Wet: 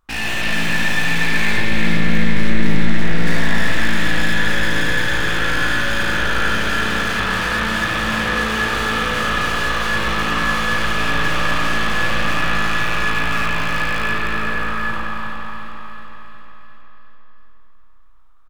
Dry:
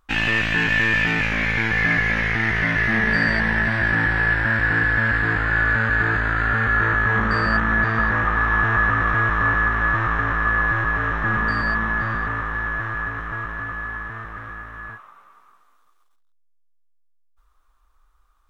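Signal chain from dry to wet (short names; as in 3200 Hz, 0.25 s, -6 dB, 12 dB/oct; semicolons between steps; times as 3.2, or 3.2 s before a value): rattling part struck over -34 dBFS, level -15 dBFS; spectral gain 1.57–3.27, 370–5000 Hz -12 dB; in parallel at +2.5 dB: limiter -16.5 dBFS, peak gain reduction 9.5 dB; on the sum: sample leveller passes 2; soft clip -18 dBFS, distortion -9 dB; on a send: feedback echo 0.362 s, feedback 57%, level -7 dB; on the sum: spring tank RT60 3.1 s, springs 32/48 ms, chirp 25 ms, DRR -5 dB; gain -6.5 dB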